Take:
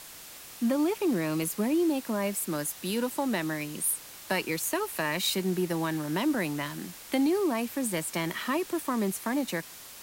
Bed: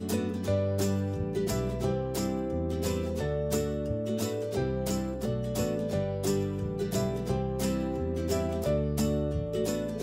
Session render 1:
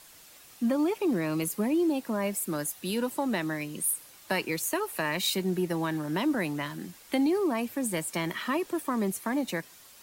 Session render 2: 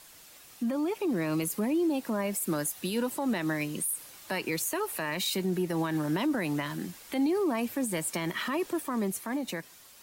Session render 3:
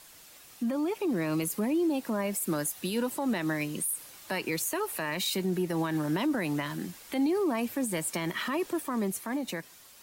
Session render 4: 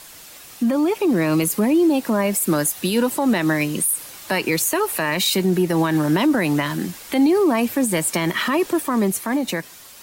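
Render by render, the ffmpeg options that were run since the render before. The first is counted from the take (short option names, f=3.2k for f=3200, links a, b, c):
-af "afftdn=nr=8:nf=-46"
-af "alimiter=level_in=0.5dB:limit=-24dB:level=0:latency=1:release=89,volume=-0.5dB,dynaudnorm=f=110:g=21:m=3dB"
-af anull
-af "volume=11dB"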